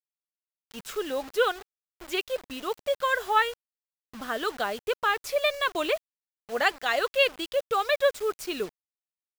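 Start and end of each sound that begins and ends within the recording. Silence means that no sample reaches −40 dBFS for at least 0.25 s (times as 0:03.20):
0:00.71–0:01.62
0:02.00–0:03.54
0:04.14–0:05.98
0:06.49–0:08.69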